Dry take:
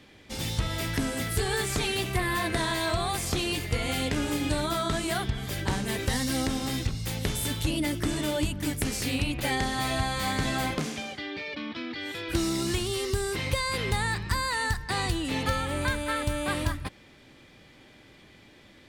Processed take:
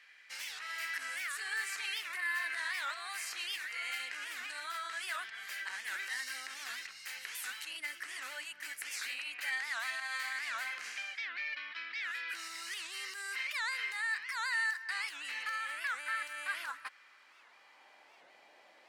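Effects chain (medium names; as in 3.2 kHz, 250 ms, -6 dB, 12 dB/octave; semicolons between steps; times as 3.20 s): treble shelf 6.7 kHz -5.5 dB; band-stop 3.5 kHz, Q 6.6; peak limiter -23.5 dBFS, peak gain reduction 8 dB; high-pass sweep 1.7 kHz -> 720 Hz, 16.39–18.28 s; warped record 78 rpm, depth 250 cents; trim -5.5 dB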